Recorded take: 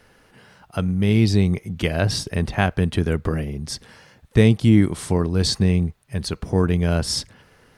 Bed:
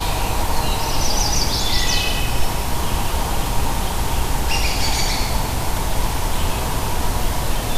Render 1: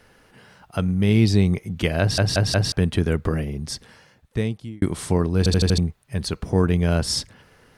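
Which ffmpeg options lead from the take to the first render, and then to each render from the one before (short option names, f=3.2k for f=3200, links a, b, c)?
-filter_complex "[0:a]asplit=11[a][b][c][d][e][f][g][h][i][j][k];[a]atrim=end=2.182[l];[b]atrim=start=1.998:end=2.182[m];[c]atrim=start=1.998:end=2.182[n];[d]atrim=start=1.998:end=2.182[o];[e]atrim=start=2.718:end=4.82,asetpts=PTS-STARTPTS,afade=t=out:st=0.912:d=1.19[p];[f]atrim=start=4.82:end=5.462,asetpts=PTS-STARTPTS,afade=t=in:d=0.004:c=hsin[q];[g]atrim=start=5.378:end=5.462[r];[h]atrim=start=5.378:end=5.462[s];[i]atrim=start=5.378:end=5.462[t];[j]atrim=start=5.378:end=5.462[u];[k]atrim=start=5.778[v];[l][m]acrossfade=d=0.004:c1=hsin:c2=hsin[w];[w][n]acrossfade=d=0.004:c1=hsin:c2=hsin[x];[x][o]acrossfade=d=0.004:c1=hsin:c2=hsin[y];[p][q]concat=n=2:v=0:a=1[z];[y][z]acrossfade=d=0.004:c1=hsin:c2=hsin[aa];[aa][r]acrossfade=d=0.004:c1=hsin:c2=hsin[ab];[ab][s]acrossfade=d=0.004:c1=hsin:c2=hsin[ac];[ac][t]acrossfade=d=0.004:c1=hsin:c2=hsin[ad];[ad][u]acrossfade=d=0.004:c1=hsin:c2=hsin[ae];[ae][v]acrossfade=d=0.004:c1=hsin:c2=hsin"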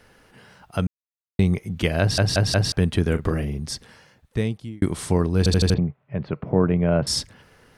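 -filter_complex "[0:a]asettb=1/sr,asplit=3[a][b][c];[a]atrim=end=3.074[d];[b]atrim=start=3.07:end=3.59,asetpts=PTS-STARTPTS,afade=t=in:d=0.004:c=qsin,afade=t=out:st=0.516:d=0.004:c=qsin,asplit=2[e][f];[f]adelay=41,volume=-11.5dB[g];[e][g]amix=inputs=2:normalize=0,atrim=end_sample=22932[h];[c]atrim=start=3.586[i];[d][h]acrossfade=d=0.004:c1=hsin:c2=qsin[j];[j][i]acrossfade=d=0.004:c1=qsin:c2=hsin,asettb=1/sr,asplit=3[k][l][m];[k]atrim=end=5.744[n];[l]atrim=start=5.74:end=7.07,asetpts=PTS-STARTPTS,afade=t=in:d=0.004:c=qsin,afade=t=out:st=1.326:d=0.004:c=qsin,highpass=130,equalizer=f=140:t=q:w=4:g=9,equalizer=f=590:t=q:w=4:g=6,equalizer=f=1.7k:t=q:w=4:g=-5,lowpass=f=2.3k:w=0.5412,lowpass=f=2.3k:w=1.3066[o];[m]atrim=start=7.066[p];[n][o]acrossfade=d=0.004:c1=hsin:c2=qsin[q];[q][p]acrossfade=d=0.004:c1=qsin:c2=hsin,asplit=3[r][s][t];[r]atrim=end=0.87,asetpts=PTS-STARTPTS,afade=t=out:st=0.866:d=0.004:c=hsin[u];[s]atrim=start=0.87:end=1.39,asetpts=PTS-STARTPTS,volume=0[v];[t]atrim=start=1.39,asetpts=PTS-STARTPTS,afade=t=in:d=0.004:c=hsin[w];[u][v][w]concat=n=3:v=0:a=1"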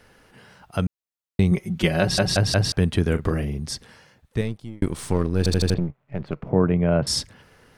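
-filter_complex "[0:a]asettb=1/sr,asplit=3[a][b][c];[a]atrim=end=1.514[d];[b]atrim=start=1.51:end=2.37,asetpts=PTS-STARTPTS,afade=t=in:d=0.004:c=qsin,afade=t=out:st=0.856:d=0.004:c=qsin,aecho=1:1:5.4:0.72,atrim=end_sample=37926[e];[c]atrim=start=2.366[f];[d][e]acrossfade=d=0.004:c1=hsin:c2=qsin[g];[g][f]acrossfade=d=0.004:c1=qsin:c2=hsin,asettb=1/sr,asplit=3[h][i][j];[h]atrim=end=4.414[k];[i]atrim=start=4.41:end=6.49,asetpts=PTS-STARTPTS,afade=t=in:d=0.004:c=qsin,afade=t=out:st=2.076:d=0.004:c=qsin,aeval=exprs='if(lt(val(0),0),0.447*val(0),val(0))':c=same[l];[j]atrim=start=6.486[m];[k][l]acrossfade=d=0.004:c1=hsin:c2=qsin[n];[n][m]acrossfade=d=0.004:c1=qsin:c2=hsin"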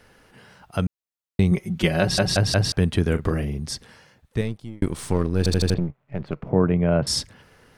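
-af anull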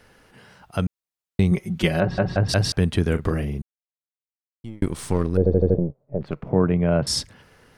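-filter_complex "[0:a]asplit=3[a][b][c];[a]afade=t=out:st=1.99:d=0.02[d];[b]lowpass=1.6k,afade=t=in:st=1.99:d=0.02,afade=t=out:st=2.48:d=0.02[e];[c]afade=t=in:st=2.48:d=0.02[f];[d][e][f]amix=inputs=3:normalize=0,asettb=1/sr,asplit=3[g][h][i];[g]atrim=end=5.374[j];[h]atrim=start=5.37:end=6.21,asetpts=PTS-STARTPTS,afade=t=in:d=0.004:c=qsin,afade=t=out:st=0.836:d=0.004:c=qsin,lowpass=f=530:t=q:w=3[k];[i]atrim=start=6.206[l];[j][k]acrossfade=d=0.004:c1=hsin:c2=qsin[m];[m][l]acrossfade=d=0.004:c1=qsin:c2=hsin,asplit=3[n][o][p];[n]atrim=end=3.62,asetpts=PTS-STARTPTS,afade=t=out:st=3.616:d=0.004:c=hsin[q];[o]atrim=start=3.62:end=4.64,asetpts=PTS-STARTPTS,volume=0[r];[p]atrim=start=4.64,asetpts=PTS-STARTPTS,afade=t=in:d=0.004:c=hsin[s];[q][r][s]concat=n=3:v=0:a=1"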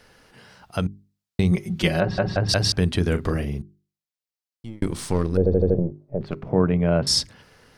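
-af "equalizer=f=4.8k:t=o:w=0.89:g=5,bandreject=f=50:t=h:w=6,bandreject=f=100:t=h:w=6,bandreject=f=150:t=h:w=6,bandreject=f=200:t=h:w=6,bandreject=f=250:t=h:w=6,bandreject=f=300:t=h:w=6,bandreject=f=350:t=h:w=6,bandreject=f=400:t=h:w=6"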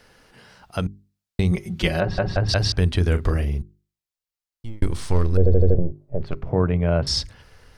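-filter_complex "[0:a]acrossover=split=5900[a][b];[b]acompressor=threshold=-41dB:ratio=4:attack=1:release=60[c];[a][c]amix=inputs=2:normalize=0,asubboost=boost=6.5:cutoff=72"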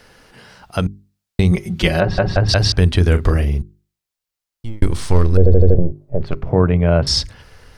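-af "volume=6dB,alimiter=limit=-1dB:level=0:latency=1"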